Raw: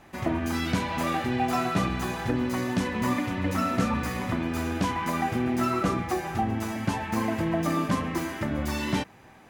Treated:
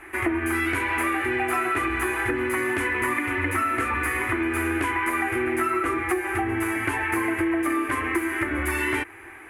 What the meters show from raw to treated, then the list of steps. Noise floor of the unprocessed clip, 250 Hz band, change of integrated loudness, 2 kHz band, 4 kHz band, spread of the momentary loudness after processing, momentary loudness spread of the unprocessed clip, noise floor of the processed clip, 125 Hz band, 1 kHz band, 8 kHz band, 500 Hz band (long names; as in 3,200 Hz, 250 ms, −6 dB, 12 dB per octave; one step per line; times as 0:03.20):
−52 dBFS, 0.0 dB, +3.5 dB, +10.5 dB, −2.5 dB, 2 LU, 4 LU, −43 dBFS, −5.5 dB, +2.5 dB, +4.0 dB, +3.5 dB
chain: drawn EQ curve 100 Hz 0 dB, 180 Hz −27 dB, 340 Hz +11 dB, 560 Hz −6 dB, 1,500 Hz +10 dB, 2,200 Hz +13 dB, 3,900 Hz −9 dB, 5,800 Hz −11 dB, 11,000 Hz +14 dB, 15,000 Hz −7 dB
downward compressor, threshold −25 dBFS, peak gain reduction 9 dB
level +3.5 dB